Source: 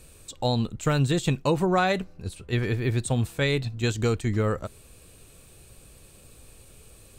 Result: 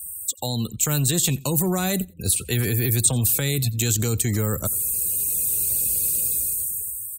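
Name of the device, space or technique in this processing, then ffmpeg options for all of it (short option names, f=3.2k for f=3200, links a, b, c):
FM broadcast chain: -filter_complex "[0:a]highpass=50,dynaudnorm=f=290:g=7:m=13.5dB,acrossover=split=130|290|6800[a][b][c][d];[a]acompressor=threshold=-22dB:ratio=4[e];[b]acompressor=threshold=-22dB:ratio=4[f];[c]acompressor=threshold=-27dB:ratio=4[g];[d]acompressor=threshold=-43dB:ratio=4[h];[e][f][g][h]amix=inputs=4:normalize=0,aemphasis=mode=production:type=50fm,alimiter=limit=-15dB:level=0:latency=1:release=11,asoftclip=type=hard:threshold=-16.5dB,lowpass=f=15k:w=0.5412,lowpass=f=15k:w=1.3066,aemphasis=mode=production:type=50fm,afftfilt=real='re*gte(hypot(re,im),0.0141)':imag='im*gte(hypot(re,im),0.0141)':win_size=1024:overlap=0.75,aecho=1:1:88|176:0.0668|0.012"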